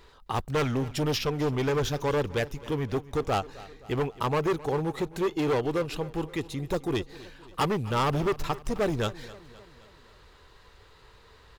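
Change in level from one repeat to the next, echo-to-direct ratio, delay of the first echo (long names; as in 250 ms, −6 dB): −5.0 dB, −17.5 dB, 262 ms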